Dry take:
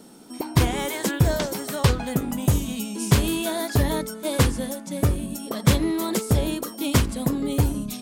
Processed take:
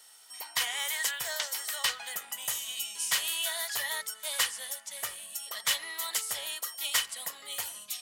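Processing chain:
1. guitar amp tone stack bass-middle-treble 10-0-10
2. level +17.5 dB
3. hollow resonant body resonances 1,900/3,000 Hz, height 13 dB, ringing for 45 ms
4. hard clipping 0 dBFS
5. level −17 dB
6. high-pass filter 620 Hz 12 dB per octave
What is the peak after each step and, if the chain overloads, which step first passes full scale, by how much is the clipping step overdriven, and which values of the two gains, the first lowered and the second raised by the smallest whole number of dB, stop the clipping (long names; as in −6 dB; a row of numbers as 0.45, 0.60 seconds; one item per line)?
−11.0, +6.5, +7.5, 0.0, −17.0, −12.5 dBFS
step 2, 7.5 dB
step 2 +9.5 dB, step 5 −9 dB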